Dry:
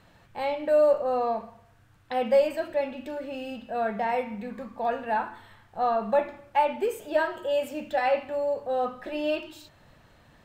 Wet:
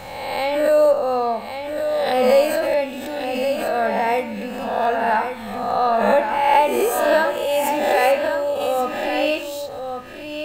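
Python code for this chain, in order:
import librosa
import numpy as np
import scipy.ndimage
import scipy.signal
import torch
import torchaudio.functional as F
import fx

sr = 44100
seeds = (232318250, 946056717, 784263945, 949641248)

y = fx.spec_swells(x, sr, rise_s=0.93)
y = fx.high_shelf(y, sr, hz=5100.0, db=10.5)
y = y + 10.0 ** (-7.5 / 20.0) * np.pad(y, (int(1122 * sr / 1000.0), 0))[:len(y)]
y = fx.pre_swell(y, sr, db_per_s=37.0)
y = y * 10.0 ** (4.5 / 20.0)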